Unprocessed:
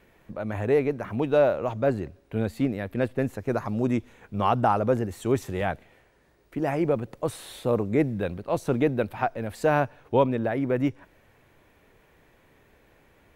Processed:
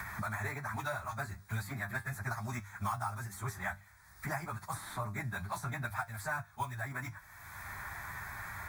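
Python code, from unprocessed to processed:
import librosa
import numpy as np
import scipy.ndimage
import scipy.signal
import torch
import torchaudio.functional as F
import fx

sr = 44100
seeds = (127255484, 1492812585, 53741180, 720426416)

p1 = scipy.signal.sosfilt(scipy.signal.butter(2, 69.0, 'highpass', fs=sr, output='sos'), x)
p2 = fx.tone_stack(p1, sr, knobs='10-0-10')
p3 = fx.hum_notches(p2, sr, base_hz=50, count=4)
p4 = fx.sample_hold(p3, sr, seeds[0], rate_hz=9600.0, jitter_pct=0)
p5 = p3 + (p4 * librosa.db_to_amplitude(-11.0))
p6 = fx.stretch_vocoder_free(p5, sr, factor=0.65)
p7 = fx.fixed_phaser(p6, sr, hz=1200.0, stages=4)
p8 = fx.comb_fb(p7, sr, f0_hz=100.0, decay_s=0.17, harmonics='all', damping=0.0, mix_pct=60)
p9 = fx.band_squash(p8, sr, depth_pct=100)
y = p9 * librosa.db_to_amplitude(11.5)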